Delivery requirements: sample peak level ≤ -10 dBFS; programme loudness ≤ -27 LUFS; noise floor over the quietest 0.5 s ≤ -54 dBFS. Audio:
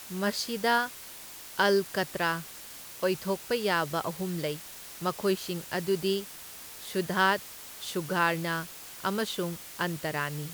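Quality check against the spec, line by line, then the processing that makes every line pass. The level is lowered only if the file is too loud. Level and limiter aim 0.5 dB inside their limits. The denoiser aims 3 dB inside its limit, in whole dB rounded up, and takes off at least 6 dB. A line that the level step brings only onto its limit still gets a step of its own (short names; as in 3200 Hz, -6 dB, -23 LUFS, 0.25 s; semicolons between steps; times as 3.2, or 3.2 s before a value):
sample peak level -11.5 dBFS: OK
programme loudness -30.0 LUFS: OK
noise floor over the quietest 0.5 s -45 dBFS: fail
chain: denoiser 12 dB, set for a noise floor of -45 dBFS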